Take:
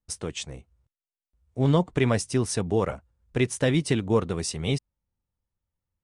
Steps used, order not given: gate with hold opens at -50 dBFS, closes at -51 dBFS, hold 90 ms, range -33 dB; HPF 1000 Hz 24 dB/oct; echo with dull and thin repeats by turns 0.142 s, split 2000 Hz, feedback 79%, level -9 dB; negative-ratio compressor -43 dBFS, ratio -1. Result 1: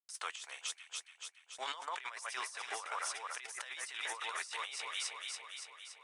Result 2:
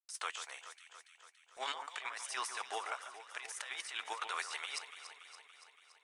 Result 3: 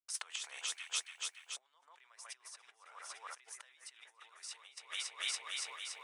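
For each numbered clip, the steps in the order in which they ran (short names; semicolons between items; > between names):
HPF > gate with hold > echo with dull and thin repeats by turns > negative-ratio compressor; HPF > negative-ratio compressor > gate with hold > echo with dull and thin repeats by turns; echo with dull and thin repeats by turns > negative-ratio compressor > gate with hold > HPF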